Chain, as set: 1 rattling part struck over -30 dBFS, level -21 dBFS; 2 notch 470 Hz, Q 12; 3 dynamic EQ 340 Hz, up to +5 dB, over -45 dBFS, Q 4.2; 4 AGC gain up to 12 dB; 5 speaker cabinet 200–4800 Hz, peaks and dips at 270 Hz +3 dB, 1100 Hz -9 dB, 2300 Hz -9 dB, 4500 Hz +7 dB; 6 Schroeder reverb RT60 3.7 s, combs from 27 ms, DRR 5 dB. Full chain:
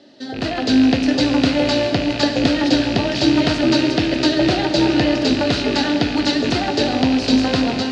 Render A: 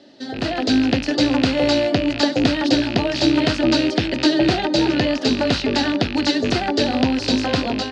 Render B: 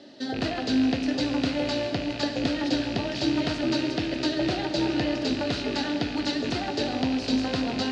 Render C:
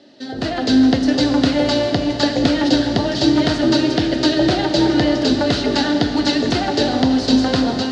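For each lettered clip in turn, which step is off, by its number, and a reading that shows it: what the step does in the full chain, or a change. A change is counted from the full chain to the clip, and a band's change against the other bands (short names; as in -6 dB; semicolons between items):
6, loudness change -1.5 LU; 4, loudness change -9.5 LU; 1, 2 kHz band -2.5 dB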